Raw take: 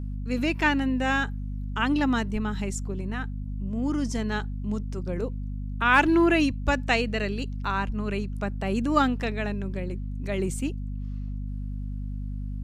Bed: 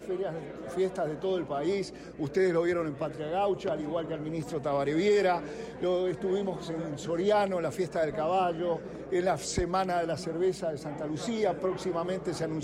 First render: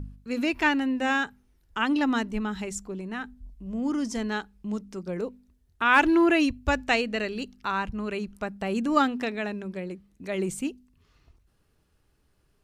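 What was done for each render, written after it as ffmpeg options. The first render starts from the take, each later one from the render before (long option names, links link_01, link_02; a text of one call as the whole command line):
ffmpeg -i in.wav -af "bandreject=frequency=50:width_type=h:width=4,bandreject=frequency=100:width_type=h:width=4,bandreject=frequency=150:width_type=h:width=4,bandreject=frequency=200:width_type=h:width=4,bandreject=frequency=250:width_type=h:width=4" out.wav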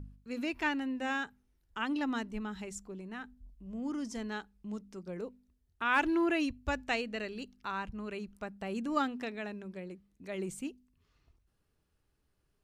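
ffmpeg -i in.wav -af "volume=-9dB" out.wav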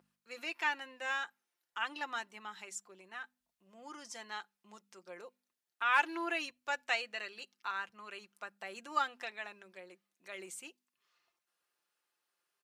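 ffmpeg -i in.wav -af "highpass=810,aecho=1:1:5.7:0.46" out.wav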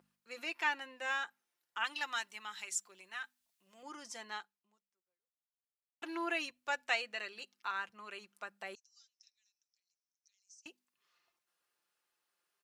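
ffmpeg -i in.wav -filter_complex "[0:a]asettb=1/sr,asplit=3[link_01][link_02][link_03];[link_01]atrim=end=1.844[link_04];[link_02]atrim=start=1.84:end=3.83,asetpts=PTS-STARTPTS,afade=type=in:duration=0.004:curve=qsin,afade=type=out:start_time=1.986:duration=0.004:curve=qsin,tiltshelf=frequency=1200:gain=-7.5[link_05];[link_03]atrim=start=3.826[link_06];[link_04][link_05]acrossfade=duration=0.004:curve1=hsin:curve2=qsin[link_07];[link_07][link_06]acrossfade=duration=0.004:curve1=qsin:curve2=hsin,asettb=1/sr,asplit=3[link_08][link_09][link_10];[link_08]atrim=end=8.754[link_11];[link_09]atrim=start=8.75:end=10.66,asetpts=PTS-STARTPTS,afade=type=in:duration=0.004:curve=qsin,afade=type=out:start_time=1.906:duration=0.004:curve=qsin,asuperpass=centerf=5700:order=4:qfactor=5[link_12];[link_10]atrim=start=10.656[link_13];[link_11][link_12]acrossfade=duration=0.004:curve1=hsin:curve2=qsin[link_14];[link_14][link_13]acrossfade=duration=0.004:curve1=qsin:curve2=hsin,asplit=2[link_15][link_16];[link_15]atrim=end=6.02,asetpts=PTS-STARTPTS,afade=type=out:start_time=4.36:duration=1.66:curve=exp[link_17];[link_16]atrim=start=6.02,asetpts=PTS-STARTPTS,afade=type=in:duration=0.004:curve=hsin[link_18];[link_17][link_18]concat=n=2:v=0:a=1" out.wav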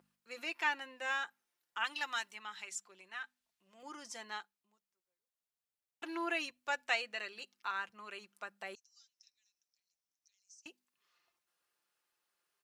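ffmpeg -i in.wav -filter_complex "[0:a]asettb=1/sr,asplit=3[link_01][link_02][link_03];[link_01]atrim=end=2.344[link_04];[link_02]atrim=start=2.34:end=3.8,asetpts=PTS-STARTPTS,afade=type=in:duration=0.004:curve=qsin,afade=type=out:start_time=1.456:duration=0.004:curve=qsin,lowpass=frequency=4000:poles=1[link_05];[link_03]atrim=start=3.796[link_06];[link_04][link_05]acrossfade=duration=0.004:curve1=hsin:curve2=qsin[link_07];[link_07][link_06]acrossfade=duration=0.004:curve1=qsin:curve2=hsin" out.wav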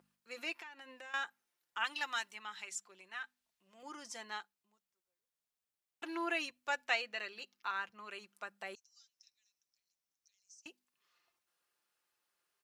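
ffmpeg -i in.wav -filter_complex "[0:a]asettb=1/sr,asplit=3[link_01][link_02][link_03];[link_01]atrim=end=0.564[link_04];[link_02]atrim=start=0.56:end=1.14,asetpts=PTS-STARTPTS,afade=type=in:duration=0.004:curve=qsin,afade=type=out:start_time=0.576:duration=0.004:curve=qsin,acompressor=threshold=-47dB:ratio=8:attack=3.2:release=140:knee=1:detection=peak[link_05];[link_03]atrim=start=1.136[link_06];[link_04][link_05]acrossfade=duration=0.004:curve1=hsin:curve2=qsin[link_07];[link_07][link_06]acrossfade=duration=0.004:curve1=qsin:curve2=hsin,asettb=1/sr,asplit=3[link_08][link_09][link_10];[link_08]atrim=end=6.854[link_11];[link_09]atrim=start=6.85:end=8.09,asetpts=PTS-STARTPTS,afade=type=in:duration=0.004:curve=qsin,afade=type=out:start_time=1.236:duration=0.004:curve=qsin,equalizer=frequency=8700:width_type=o:width=0.42:gain=-7.5[link_12];[link_10]atrim=start=8.086[link_13];[link_11][link_12]acrossfade=duration=0.004:curve1=hsin:curve2=qsin[link_14];[link_14][link_13]acrossfade=duration=0.004:curve1=qsin:curve2=hsin" out.wav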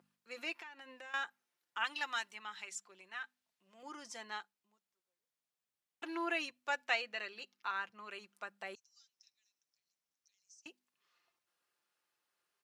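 ffmpeg -i in.wav -af "highpass=84,highshelf=frequency=7700:gain=-5.5" out.wav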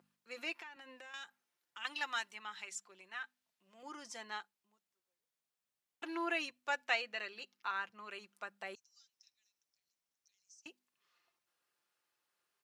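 ffmpeg -i in.wav -filter_complex "[0:a]asettb=1/sr,asplit=3[link_01][link_02][link_03];[link_01]atrim=end=0.764[link_04];[link_02]atrim=start=0.76:end=1.85,asetpts=PTS-STARTPTS,afade=type=in:duration=0.004:curve=qsin,afade=type=out:start_time=1.086:duration=0.004:curve=qsin,acrossover=split=170|3000[link_05][link_06][link_07];[link_06]acompressor=threshold=-49dB:ratio=6:attack=3.2:release=140:knee=2.83:detection=peak[link_08];[link_05][link_08][link_07]amix=inputs=3:normalize=0[link_09];[link_03]atrim=start=1.846[link_10];[link_04][link_09]acrossfade=duration=0.004:curve1=hsin:curve2=qsin[link_11];[link_11][link_10]acrossfade=duration=0.004:curve1=qsin:curve2=hsin" out.wav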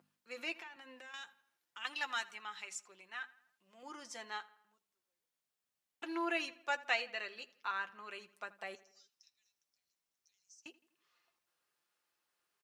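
ffmpeg -i in.wav -filter_complex "[0:a]asplit=2[link_01][link_02];[link_02]adelay=12,volume=-12dB[link_03];[link_01][link_03]amix=inputs=2:normalize=0,asplit=2[link_04][link_05];[link_05]adelay=82,lowpass=frequency=3500:poles=1,volume=-19dB,asplit=2[link_06][link_07];[link_07]adelay=82,lowpass=frequency=3500:poles=1,volume=0.53,asplit=2[link_08][link_09];[link_09]adelay=82,lowpass=frequency=3500:poles=1,volume=0.53,asplit=2[link_10][link_11];[link_11]adelay=82,lowpass=frequency=3500:poles=1,volume=0.53[link_12];[link_04][link_06][link_08][link_10][link_12]amix=inputs=5:normalize=0" out.wav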